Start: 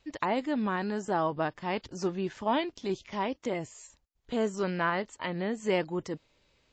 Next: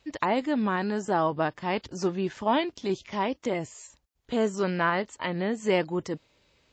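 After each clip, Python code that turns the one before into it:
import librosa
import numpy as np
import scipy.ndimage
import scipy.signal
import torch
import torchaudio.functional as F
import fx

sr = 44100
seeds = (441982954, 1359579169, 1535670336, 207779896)

y = scipy.signal.sosfilt(scipy.signal.butter(2, 42.0, 'highpass', fs=sr, output='sos'), x)
y = y * librosa.db_to_amplitude(3.5)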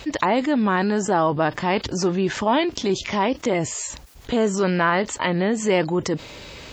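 y = fx.env_flatten(x, sr, amount_pct=50)
y = y * librosa.db_to_amplitude(4.0)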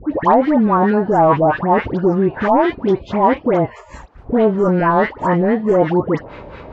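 y = 10.0 ** (-13.0 / 20.0) * (np.abs((x / 10.0 ** (-13.0 / 20.0) + 3.0) % 4.0 - 2.0) - 1.0)
y = fx.dispersion(y, sr, late='highs', ms=120.0, hz=1400.0)
y = fx.filter_lfo_lowpass(y, sr, shape='sine', hz=4.6, low_hz=740.0, high_hz=1600.0, q=1.6)
y = y * librosa.db_to_amplitude(6.0)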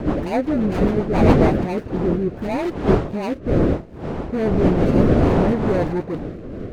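y = scipy.signal.medfilt(x, 41)
y = fx.dmg_wind(y, sr, seeds[0], corner_hz=420.0, level_db=-14.0)
y = fx.rotary_switch(y, sr, hz=7.5, then_hz=0.7, switch_at_s=1.23)
y = y * librosa.db_to_amplitude(-4.5)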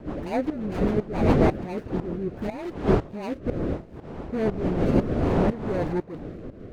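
y = fx.tremolo_shape(x, sr, shape='saw_up', hz=2.0, depth_pct=80)
y = y * librosa.db_to_amplitude(-3.0)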